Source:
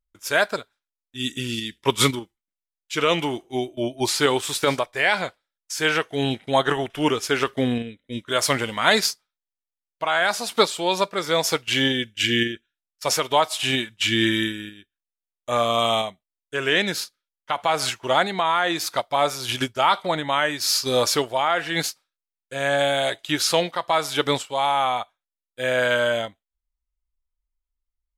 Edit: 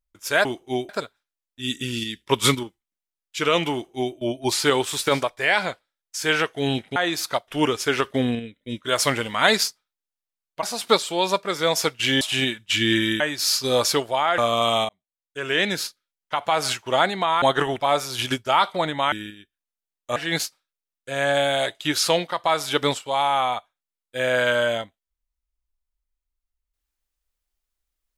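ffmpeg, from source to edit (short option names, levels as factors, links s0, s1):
-filter_complex "[0:a]asplit=14[s0][s1][s2][s3][s4][s5][s6][s7][s8][s9][s10][s11][s12][s13];[s0]atrim=end=0.452[s14];[s1]atrim=start=3.278:end=3.722[s15];[s2]atrim=start=0.448:end=6.522[s16];[s3]atrim=start=18.588:end=19.112[s17];[s4]atrim=start=6.908:end=10.062[s18];[s5]atrim=start=10.308:end=11.892[s19];[s6]atrim=start=13.518:end=14.512[s20];[s7]atrim=start=20.418:end=21.602[s21];[s8]atrim=start=15.548:end=16.06,asetpts=PTS-STARTPTS,afade=t=out:st=0.508:d=0.004:c=hsin[s22];[s9]atrim=start=16.06:end=18.592,asetpts=PTS-STARTPTS,afade=t=in:d=0.81[s23];[s10]atrim=start=6.518:end=6.912[s24];[s11]atrim=start=19.108:end=20.422[s25];[s12]atrim=start=14.508:end=15.552[s26];[s13]atrim=start=21.598[s27];[s14][s15]acrossfade=d=0.004:c1=hsin:c2=hsin[s28];[s28][s16]acrossfade=d=0.004:c1=hsin:c2=hsin[s29];[s29][s17]acrossfade=d=0.004:c1=hsin:c2=hsin[s30];[s30][s18]acrossfade=d=0.004:c1=hsin:c2=hsin[s31];[s31][s19]acrossfade=d=0.004:c1=hsin:c2=hsin[s32];[s32][s20]acrossfade=d=0.004:c1=hsin:c2=hsin[s33];[s33][s21]acrossfade=d=0.004:c1=hsin:c2=hsin[s34];[s22][s23]concat=n=2:v=0:a=1[s35];[s34][s35]acrossfade=d=0.004:c1=hsin:c2=hsin[s36];[s36][s24]acrossfade=d=0.004:c1=hsin:c2=hsin[s37];[s37][s25]acrossfade=d=0.004:c1=hsin:c2=hsin[s38];[s38][s26]acrossfade=d=0.004:c1=hsin:c2=hsin[s39];[s39][s27]acrossfade=d=0.004:c1=hsin:c2=hsin"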